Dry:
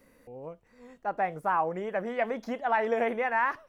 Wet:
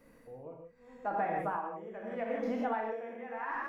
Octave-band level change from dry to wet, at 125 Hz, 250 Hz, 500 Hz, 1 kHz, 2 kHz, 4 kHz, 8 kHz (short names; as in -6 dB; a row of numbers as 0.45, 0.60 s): -4.0 dB, -2.0 dB, -6.5 dB, -7.0 dB, -9.5 dB, under -10 dB, n/a